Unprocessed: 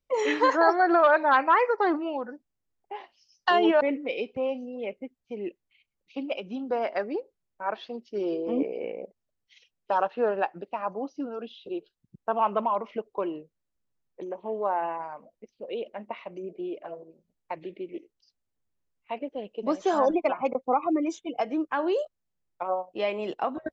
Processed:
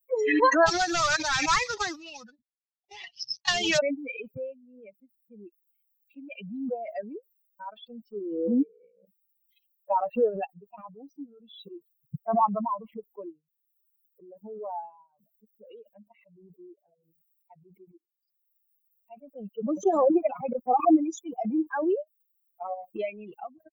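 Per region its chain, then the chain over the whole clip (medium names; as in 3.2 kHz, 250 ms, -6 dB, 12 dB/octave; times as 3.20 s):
0.66–3.79 s: CVSD coder 32 kbps + spectrum-flattening compressor 2:1
whole clip: expander on every frequency bin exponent 3; dynamic bell 310 Hz, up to +4 dB, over -48 dBFS, Q 4; swell ahead of each attack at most 43 dB/s; trim +5 dB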